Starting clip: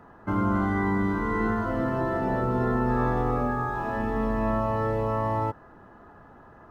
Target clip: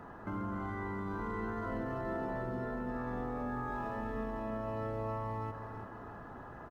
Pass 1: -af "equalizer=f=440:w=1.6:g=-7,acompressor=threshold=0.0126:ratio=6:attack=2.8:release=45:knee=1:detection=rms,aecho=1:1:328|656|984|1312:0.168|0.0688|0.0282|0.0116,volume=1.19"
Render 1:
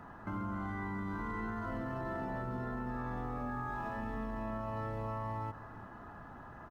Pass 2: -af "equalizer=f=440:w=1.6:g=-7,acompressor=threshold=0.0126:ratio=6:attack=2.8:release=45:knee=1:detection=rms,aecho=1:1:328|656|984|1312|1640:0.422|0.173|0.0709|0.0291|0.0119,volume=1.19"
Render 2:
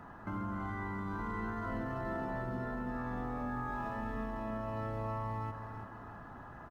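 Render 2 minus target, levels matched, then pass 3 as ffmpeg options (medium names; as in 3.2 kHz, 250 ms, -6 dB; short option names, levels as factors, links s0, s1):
500 Hz band -3.0 dB
-af "acompressor=threshold=0.0126:ratio=6:attack=2.8:release=45:knee=1:detection=rms,aecho=1:1:328|656|984|1312|1640:0.422|0.173|0.0709|0.0291|0.0119,volume=1.19"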